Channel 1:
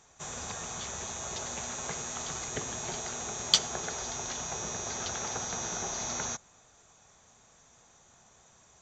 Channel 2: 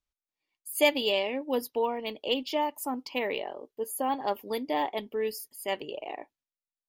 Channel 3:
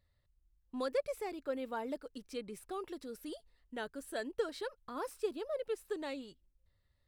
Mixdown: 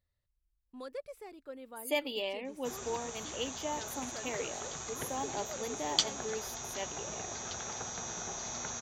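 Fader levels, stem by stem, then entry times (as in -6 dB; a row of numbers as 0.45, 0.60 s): -5.0, -9.0, -8.0 dB; 2.45, 1.10, 0.00 s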